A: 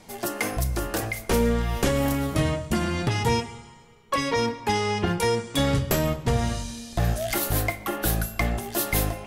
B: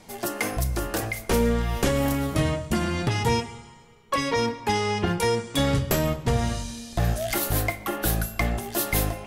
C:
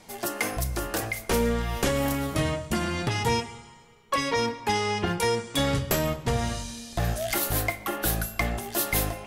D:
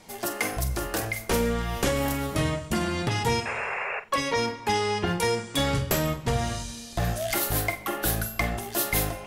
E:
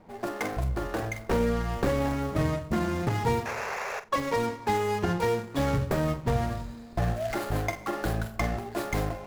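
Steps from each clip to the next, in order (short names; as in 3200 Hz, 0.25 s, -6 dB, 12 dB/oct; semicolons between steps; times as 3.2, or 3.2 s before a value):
nothing audible
low shelf 460 Hz -4 dB
painted sound noise, 3.45–4, 380–2800 Hz -31 dBFS; flutter echo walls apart 7.8 m, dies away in 0.23 s
median filter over 15 samples; mismatched tape noise reduction decoder only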